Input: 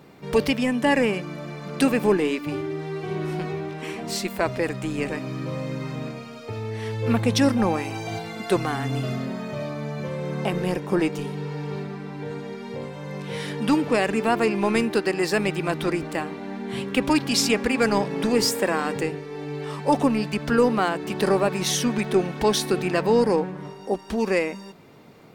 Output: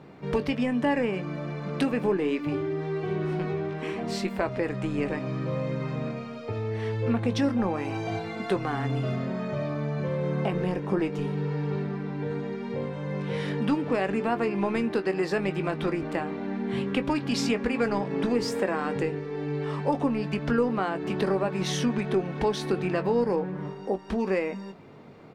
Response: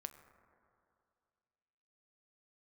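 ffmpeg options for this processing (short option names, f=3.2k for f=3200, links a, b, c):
-filter_complex "[0:a]aemphasis=mode=reproduction:type=75fm,acompressor=threshold=-25dB:ratio=2.5,asplit=2[a][b];[b]adelay=21,volume=-11dB[c];[a][c]amix=inputs=2:normalize=0"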